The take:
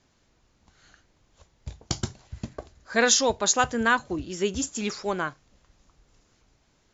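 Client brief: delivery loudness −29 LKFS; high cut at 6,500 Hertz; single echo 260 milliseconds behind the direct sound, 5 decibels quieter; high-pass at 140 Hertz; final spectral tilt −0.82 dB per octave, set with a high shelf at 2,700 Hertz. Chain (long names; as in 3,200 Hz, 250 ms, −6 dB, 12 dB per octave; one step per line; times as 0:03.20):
high-pass filter 140 Hz
low-pass filter 6,500 Hz
high-shelf EQ 2,700 Hz +9 dB
single-tap delay 260 ms −5 dB
level −8 dB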